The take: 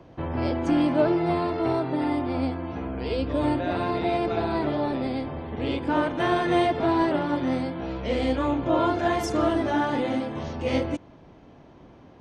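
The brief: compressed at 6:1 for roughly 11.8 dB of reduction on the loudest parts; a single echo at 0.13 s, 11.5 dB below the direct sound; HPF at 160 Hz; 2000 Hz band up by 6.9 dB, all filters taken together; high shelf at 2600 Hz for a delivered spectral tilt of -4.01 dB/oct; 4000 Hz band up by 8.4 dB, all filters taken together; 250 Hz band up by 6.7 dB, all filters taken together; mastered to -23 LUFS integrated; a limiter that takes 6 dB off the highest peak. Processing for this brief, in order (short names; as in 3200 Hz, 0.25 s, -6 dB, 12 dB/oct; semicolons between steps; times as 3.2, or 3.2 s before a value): HPF 160 Hz; bell 250 Hz +9 dB; bell 2000 Hz +5.5 dB; high shelf 2600 Hz +4.5 dB; bell 4000 Hz +5 dB; compressor 6:1, threshold -25 dBFS; limiter -21 dBFS; echo 0.13 s -11.5 dB; gain +6.5 dB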